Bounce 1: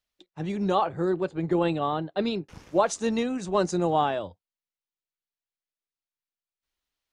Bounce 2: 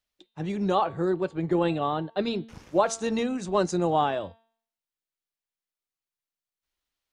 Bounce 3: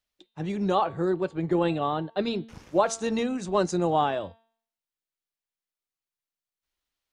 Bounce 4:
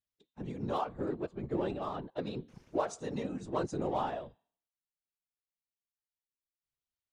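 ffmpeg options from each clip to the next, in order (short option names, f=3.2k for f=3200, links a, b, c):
-af "bandreject=f=226.4:t=h:w=4,bandreject=f=452.8:t=h:w=4,bandreject=f=679.2:t=h:w=4,bandreject=f=905.6:t=h:w=4,bandreject=f=1.132k:t=h:w=4,bandreject=f=1.3584k:t=h:w=4,bandreject=f=1.5848k:t=h:w=4,bandreject=f=1.8112k:t=h:w=4,bandreject=f=2.0376k:t=h:w=4,bandreject=f=2.264k:t=h:w=4,bandreject=f=2.4904k:t=h:w=4,bandreject=f=2.7168k:t=h:w=4,bandreject=f=2.9432k:t=h:w=4,bandreject=f=3.1696k:t=h:w=4,bandreject=f=3.396k:t=h:w=4,bandreject=f=3.6224k:t=h:w=4,bandreject=f=3.8488k:t=h:w=4,bandreject=f=4.0752k:t=h:w=4,bandreject=f=4.3016k:t=h:w=4,bandreject=f=4.528k:t=h:w=4,bandreject=f=4.7544k:t=h:w=4"
-af anull
-filter_complex "[0:a]asplit=2[a][b];[b]adynamicsmooth=sensitivity=3:basefreq=560,volume=-3dB[c];[a][c]amix=inputs=2:normalize=0,afftfilt=real='hypot(re,im)*cos(2*PI*random(0))':imag='hypot(re,im)*sin(2*PI*random(1))':win_size=512:overlap=0.75,volume=-8dB"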